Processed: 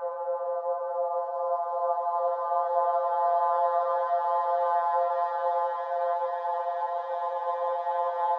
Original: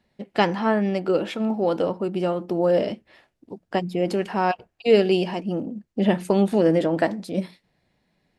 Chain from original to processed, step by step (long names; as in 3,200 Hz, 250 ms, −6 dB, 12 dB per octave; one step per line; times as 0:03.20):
vocoder with a gliding carrier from D#3, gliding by +6 semitones
frequency shifter +360 Hz
extreme stretch with random phases 30×, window 0.25 s, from 0:01.55
level −1.5 dB